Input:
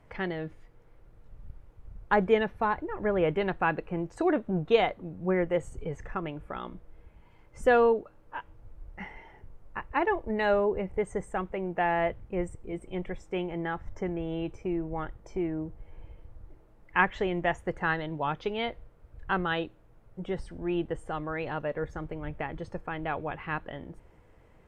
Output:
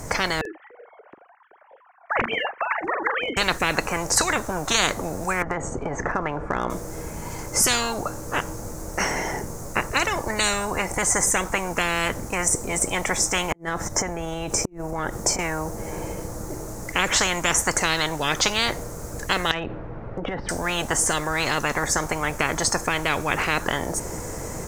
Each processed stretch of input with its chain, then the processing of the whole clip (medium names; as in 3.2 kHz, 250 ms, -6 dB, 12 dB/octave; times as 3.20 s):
0.41–3.37 s: formants replaced by sine waves + doubling 43 ms -12 dB
5.42–6.70 s: low-pass 1.4 kHz + compression 5:1, threshold -33 dBFS
13.52–15.39 s: compression 12:1, threshold -39 dBFS + inverted gate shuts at -33 dBFS, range -40 dB
19.51–20.49 s: steep low-pass 3 kHz + compression, threshold -42 dBFS
whole clip: resonant high shelf 4.5 kHz +14 dB, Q 3; level rider gain up to 4 dB; spectrum-flattening compressor 10:1; trim +1.5 dB